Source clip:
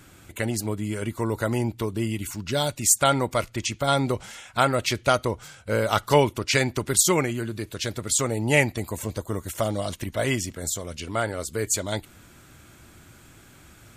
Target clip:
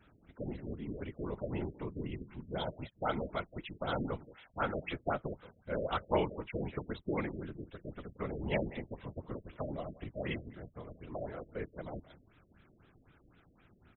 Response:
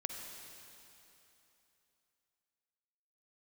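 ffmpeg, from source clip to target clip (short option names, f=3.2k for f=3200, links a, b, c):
-af "aecho=1:1:178:0.133,afftfilt=real='hypot(re,im)*cos(2*PI*random(0))':imag='hypot(re,im)*sin(2*PI*random(1))':win_size=512:overlap=0.75,afftfilt=real='re*lt(b*sr/1024,640*pow(4100/640,0.5+0.5*sin(2*PI*3.9*pts/sr)))':imag='im*lt(b*sr/1024,640*pow(4100/640,0.5+0.5*sin(2*PI*3.9*pts/sr)))':win_size=1024:overlap=0.75,volume=-6.5dB"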